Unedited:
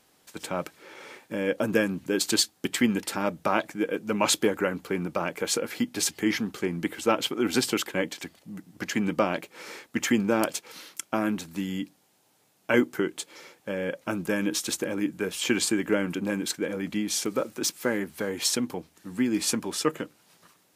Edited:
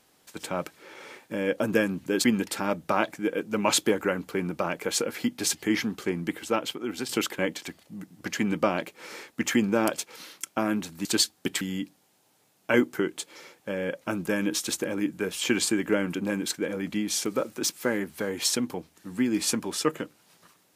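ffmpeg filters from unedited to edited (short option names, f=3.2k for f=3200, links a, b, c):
-filter_complex "[0:a]asplit=5[a][b][c][d][e];[a]atrim=end=2.242[f];[b]atrim=start=2.798:end=7.65,asetpts=PTS-STARTPTS,afade=t=out:st=3.892:d=0.96:silence=0.316228[g];[c]atrim=start=7.65:end=11.612,asetpts=PTS-STARTPTS,afade=t=in:d=0.004:c=hsin:silence=0.316228[h];[d]atrim=start=2.238:end=2.802[i];[e]atrim=start=11.608[j];[g][h]concat=n=2:v=0:a=1[k];[f][k]acrossfade=d=0.004:c1=hsin:c2=hsin[l];[l][i]acrossfade=d=0.004:c1=hsin:c2=hsin[m];[m][j]acrossfade=d=0.004:c1=hsin:c2=hsin"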